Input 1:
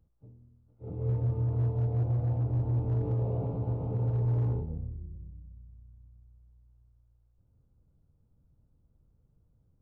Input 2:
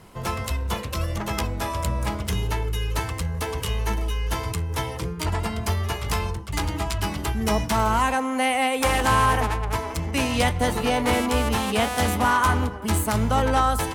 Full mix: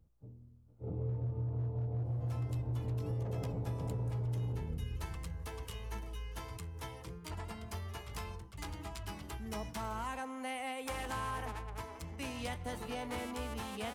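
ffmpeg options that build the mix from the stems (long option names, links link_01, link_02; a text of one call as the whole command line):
ffmpeg -i stem1.wav -i stem2.wav -filter_complex "[0:a]volume=0.5dB[link_01];[1:a]adelay=2050,volume=-17.5dB[link_02];[link_01][link_02]amix=inputs=2:normalize=0,acompressor=threshold=-34dB:ratio=6" out.wav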